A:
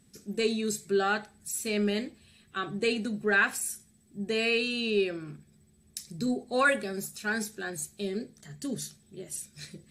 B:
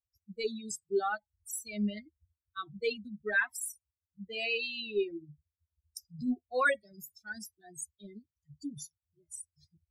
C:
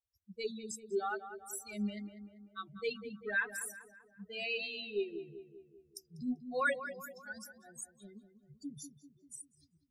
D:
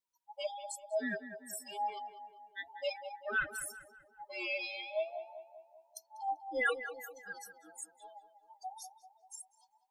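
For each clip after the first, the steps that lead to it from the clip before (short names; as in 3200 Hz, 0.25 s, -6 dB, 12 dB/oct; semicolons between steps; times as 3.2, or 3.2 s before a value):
per-bin expansion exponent 3
darkening echo 0.195 s, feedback 55%, low-pass 1900 Hz, level -10 dB; gain -4.5 dB
band inversion scrambler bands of 1000 Hz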